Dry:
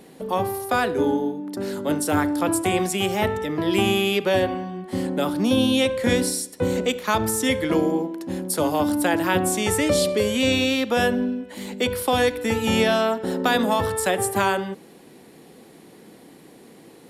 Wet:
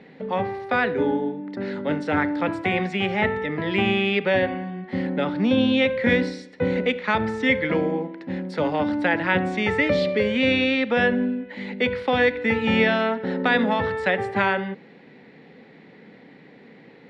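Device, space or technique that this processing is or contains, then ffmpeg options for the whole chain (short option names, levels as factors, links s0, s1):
guitar cabinet: -af "highpass=89,equalizer=f=99:t=q:w=4:g=-5,equalizer=f=340:t=q:w=4:g=-9,equalizer=f=680:t=q:w=4:g=-5,equalizer=f=1100:t=q:w=4:g=-7,equalizer=f=2000:t=q:w=4:g=7,equalizer=f=3100:t=q:w=4:g=-5,lowpass=f=3500:w=0.5412,lowpass=f=3500:w=1.3066,volume=1.26"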